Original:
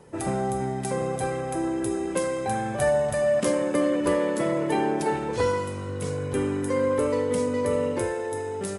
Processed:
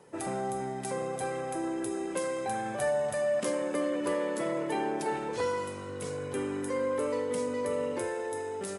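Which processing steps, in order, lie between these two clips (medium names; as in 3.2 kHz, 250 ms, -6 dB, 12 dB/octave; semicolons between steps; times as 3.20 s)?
in parallel at -1.5 dB: peak limiter -21.5 dBFS, peak gain reduction 9.5 dB; on the sum: high-pass 280 Hz 6 dB/octave; trim -8.5 dB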